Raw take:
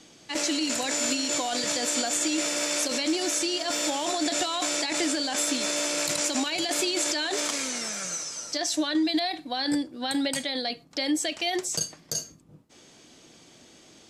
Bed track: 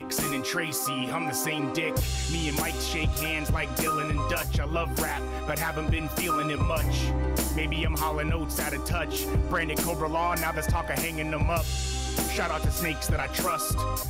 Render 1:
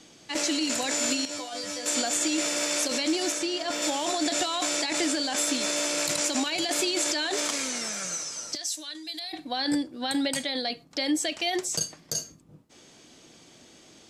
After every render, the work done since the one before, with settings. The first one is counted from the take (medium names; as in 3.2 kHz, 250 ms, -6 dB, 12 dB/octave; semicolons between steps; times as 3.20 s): 1.25–1.86 s: feedback comb 100 Hz, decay 0.18 s, mix 100%; 3.32–3.82 s: treble shelf 4.9 kHz -8 dB; 8.55–9.33 s: pre-emphasis filter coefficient 0.9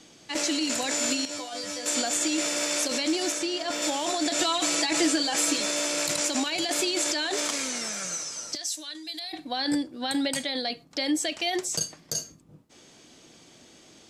4.38–5.61 s: comb 6.1 ms, depth 83%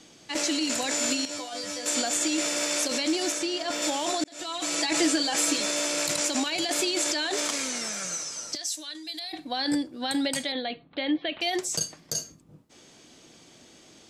4.24–4.92 s: fade in; 10.52–11.41 s: steep low-pass 3.9 kHz 72 dB/octave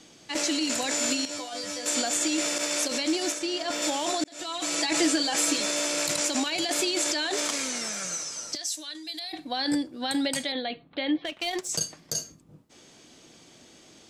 2.58–3.48 s: expander -28 dBFS; 11.24–11.69 s: power-law waveshaper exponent 1.4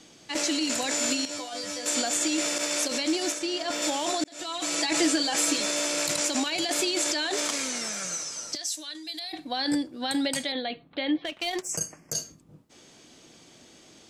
11.62–12.13 s: Butterworth band-stop 3.8 kHz, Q 1.3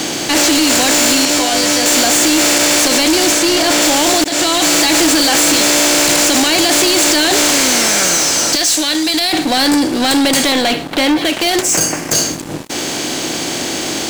spectral levelling over time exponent 0.6; waveshaping leveller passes 5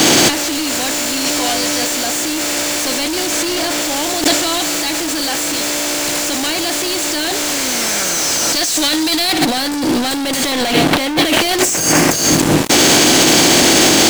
waveshaping leveller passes 3; compressor with a negative ratio -14 dBFS, ratio -0.5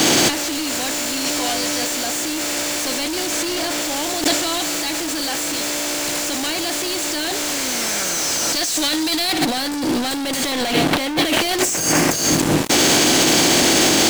trim -4.5 dB